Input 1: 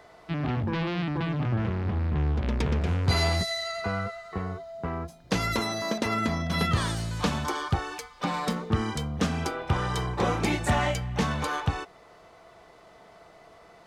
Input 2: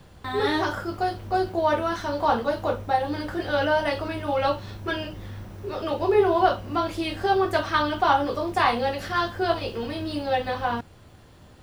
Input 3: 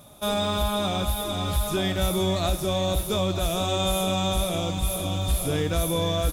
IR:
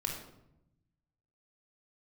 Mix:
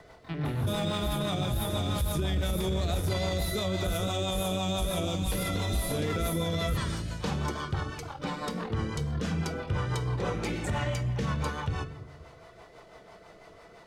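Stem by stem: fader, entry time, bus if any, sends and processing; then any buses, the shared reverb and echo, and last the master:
+1.5 dB, 0.00 s, send −10.5 dB, automatic ducking −9 dB, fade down 0.35 s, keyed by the second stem
−17.5 dB, 0.00 s, no send, upward compression, threshold −28 dBFS; ring modulation 21 Hz
+0.5 dB, 0.45 s, no send, no processing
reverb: on, RT60 0.85 s, pre-delay 21 ms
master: rotating-speaker cabinet horn 6 Hz; brickwall limiter −21 dBFS, peak gain reduction 10 dB

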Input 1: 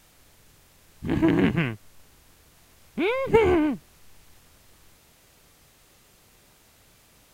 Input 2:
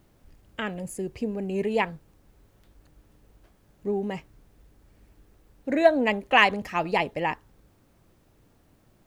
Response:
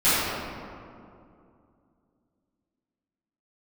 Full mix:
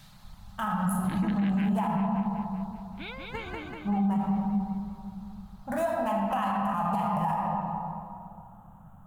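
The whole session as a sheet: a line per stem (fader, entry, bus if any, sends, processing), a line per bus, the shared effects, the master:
−3.0 dB, 0.00 s, no send, echo send −15 dB, reverb reduction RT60 1.8 s; graphic EQ with 15 bands 400 Hz −11 dB, 1,600 Hz +6 dB, 4,000 Hz +12 dB; automatic ducking −12 dB, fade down 1.95 s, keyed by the second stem
+2.0 dB, 0.00 s, send −16 dB, no echo send, adaptive Wiener filter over 9 samples; drawn EQ curve 110 Hz 0 dB, 200 Hz +6 dB, 290 Hz −21 dB, 460 Hz −22 dB, 800 Hz +7 dB, 1,300 Hz +5 dB, 2,200 Hz −18 dB, 3,100 Hz −6 dB, 4,400 Hz −11 dB, 11,000 Hz +12 dB; downward compressor, threshold −25 dBFS, peak gain reduction 12.5 dB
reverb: on, RT60 2.5 s, pre-delay 3 ms
echo: repeating echo 192 ms, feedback 59%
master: brickwall limiter −20 dBFS, peak gain reduction 10.5 dB

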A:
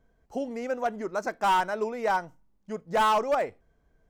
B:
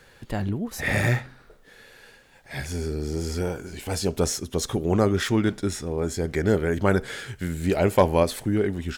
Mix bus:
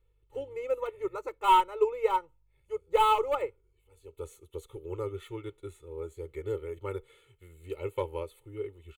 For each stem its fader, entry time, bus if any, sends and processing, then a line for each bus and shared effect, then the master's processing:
+1.5 dB, 0.00 s, no send, mains hum 50 Hz, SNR 32 dB
−15.0 dB, 0.00 s, no send, automatic gain control gain up to 8 dB; automatic ducking −19 dB, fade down 0.90 s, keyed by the first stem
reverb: not used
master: phaser with its sweep stopped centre 1,100 Hz, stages 8; comb filter 2.3 ms, depth 77%; expander for the loud parts 1.5 to 1, over −46 dBFS

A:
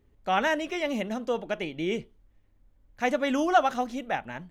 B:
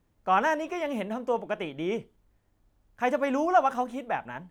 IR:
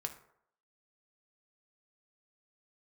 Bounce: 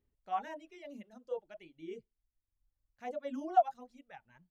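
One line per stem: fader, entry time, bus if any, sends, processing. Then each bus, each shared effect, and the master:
−16.0 dB, 0.00 s, no send, automatic ducking −6 dB, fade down 0.20 s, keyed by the second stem
−1.0 dB, 25 ms, no send, running median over 25 samples; every bin expanded away from the loudest bin 2.5 to 1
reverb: not used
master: reverb reduction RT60 1.5 s

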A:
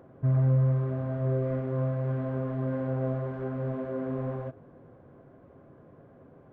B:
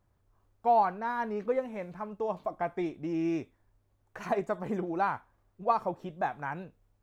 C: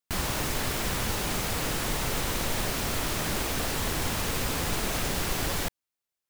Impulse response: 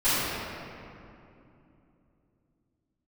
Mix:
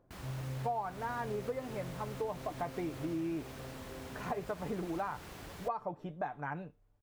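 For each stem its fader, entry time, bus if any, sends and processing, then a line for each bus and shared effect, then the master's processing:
−17.0 dB, 0.00 s, no send, no processing
−2.0 dB, 0.00 s, no send, comb filter 6.8 ms, depth 40%
−16.5 dB, 0.00 s, no send, high-pass filter 44 Hz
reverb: not used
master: high-shelf EQ 3,300 Hz −8 dB; downward compressor 6 to 1, threshold −33 dBFS, peak gain reduction 12 dB

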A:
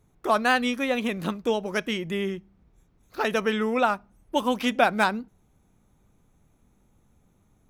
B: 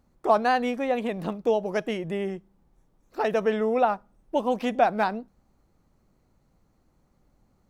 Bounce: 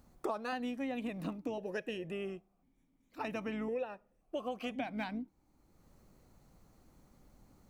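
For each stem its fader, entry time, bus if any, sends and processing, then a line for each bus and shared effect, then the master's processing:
+1.0 dB, 0.00 s, no send, sub-octave generator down 2 octaves, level −2 dB; formant filter that steps through the vowels 1.9 Hz
+2.0 dB, 0.00 s, no send, high-shelf EQ 5,400 Hz +7 dB; automatic ducking −15 dB, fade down 1.80 s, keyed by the first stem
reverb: not used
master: downward compressor 10 to 1, threshold −34 dBFS, peak gain reduction 18.5 dB

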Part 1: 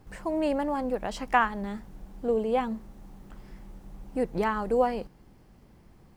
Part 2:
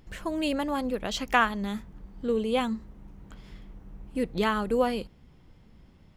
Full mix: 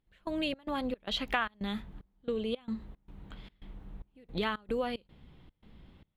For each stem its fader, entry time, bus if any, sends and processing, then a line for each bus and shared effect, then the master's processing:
−19.0 dB, 0.00 s, no send, sub-octave generator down 1 octave, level −6 dB
−0.5 dB, 0.00 s, polarity flipped, no send, high shelf with overshoot 4,600 Hz −6.5 dB, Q 3; downward compressor 3 to 1, threshold −29 dBFS, peak gain reduction 10.5 dB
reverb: not used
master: gate pattern "..xx.xx.xxx.xxx" 112 BPM −24 dB

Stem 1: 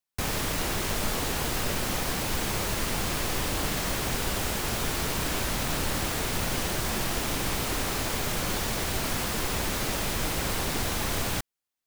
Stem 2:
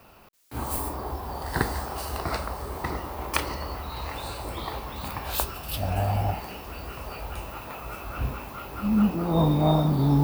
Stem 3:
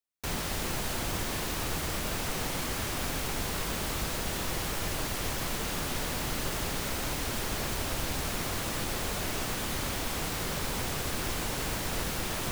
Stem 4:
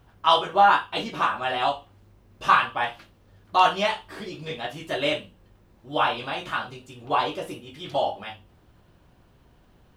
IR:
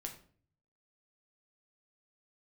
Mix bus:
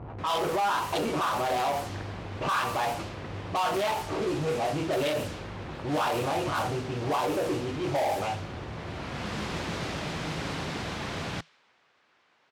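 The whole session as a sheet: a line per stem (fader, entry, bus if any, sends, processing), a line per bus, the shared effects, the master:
0:08.66 −11 dB → 0:09.33 −3 dB, 0.00 s, no send, parametric band 160 Hz +7 dB 0.23 octaves
−16.0 dB, 0.40 s, no send, downward compressor, threshold −23 dBFS, peak gain reduction 7 dB
−11.5 dB, 0.90 s, no send, low-pass filter 5,600 Hz 12 dB per octave; first difference
−5.5 dB, 0.00 s, no send, adaptive Wiener filter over 25 samples; parametric band 200 Hz −13 dB 0.53 octaves; power curve on the samples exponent 0.5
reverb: not used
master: high-pass filter 82 Hz 12 dB per octave; low-pass that shuts in the quiet parts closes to 1,500 Hz, open at −21.5 dBFS; brickwall limiter −21 dBFS, peak gain reduction 11 dB

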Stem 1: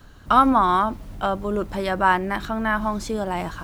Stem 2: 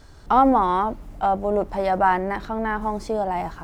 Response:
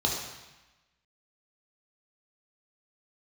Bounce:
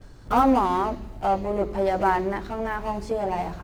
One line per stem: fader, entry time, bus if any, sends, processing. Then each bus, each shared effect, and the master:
+2.5 dB, 0.00 s, send −20.5 dB, running median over 41 samples; automatic ducking −8 dB, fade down 0.65 s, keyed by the second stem
−4.0 dB, 16 ms, no send, no processing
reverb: on, RT60 1.1 s, pre-delay 3 ms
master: no processing

